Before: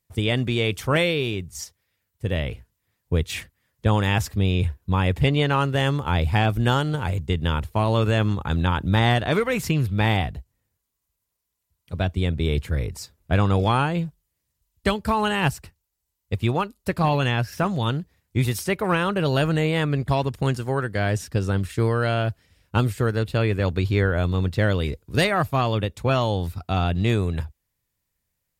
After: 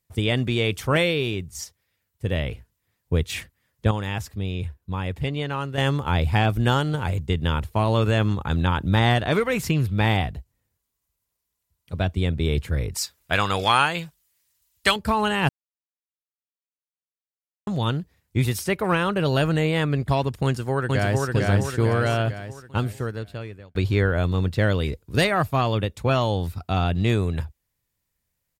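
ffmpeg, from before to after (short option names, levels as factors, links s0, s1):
-filter_complex "[0:a]asettb=1/sr,asplit=3[s0][s1][s2];[s0]atrim=end=12.944[s3];[s1]atrim=start=12.94:end=14.96,asetpts=PTS-STARTPTS,afade=t=in:d=0.004:c=qsin,afade=t=out:st=2.016:d=0.004:c=qsin,tiltshelf=f=660:g=-10[s4];[s2]atrim=start=14.956[s5];[s3][s4]acrossfade=d=0.004:c1=hsin:c2=qsin[s6];[s6][s5]acrossfade=d=0.004:c1=qsin:c2=hsin,asplit=2[s7][s8];[s8]afade=t=in:st=20.44:d=0.01,afade=t=out:st=21.3:d=0.01,aecho=0:1:450|900|1350|1800|2250|2700|3150|3600:0.841395|0.462767|0.254522|0.139987|0.0769929|0.0423461|0.0232904|0.0128097[s9];[s7][s9]amix=inputs=2:normalize=0,asplit=6[s10][s11][s12][s13][s14][s15];[s10]atrim=end=3.912[s16];[s11]atrim=start=3.908:end=5.782,asetpts=PTS-STARTPTS,volume=0.447[s17];[s12]atrim=start=5.778:end=15.49,asetpts=PTS-STARTPTS,afade=t=out:st=9.708:d=0.004:c=hsin[s18];[s13]atrim=start=15.49:end=17.67,asetpts=PTS-STARTPTS,volume=0[s19];[s14]atrim=start=17.67:end=23.75,asetpts=PTS-STARTPTS,afade=t=in:d=0.004:c=hsin,afade=t=out:st=4.62:d=1.46[s20];[s15]atrim=start=23.75,asetpts=PTS-STARTPTS,afade=t=in:d=0.004:c=hsin[s21];[s16][s17]acrossfade=d=0.004:c1=hsin:c2=hsin[s22];[s18][s19][s20][s21]concat=n=4:v=0:a=1[s23];[s22][s23]acrossfade=d=0.004:c1=hsin:c2=hsin"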